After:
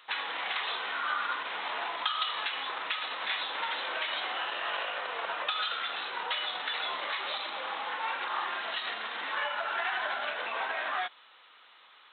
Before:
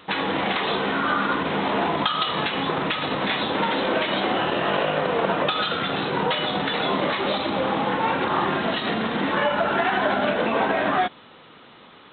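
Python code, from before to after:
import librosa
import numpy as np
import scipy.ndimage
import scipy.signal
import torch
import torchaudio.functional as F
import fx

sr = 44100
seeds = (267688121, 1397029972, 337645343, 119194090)

y = scipy.signal.sosfilt(scipy.signal.butter(2, 1100.0, 'highpass', fs=sr, output='sos'), x)
y = y * 10.0 ** (-6.0 / 20.0)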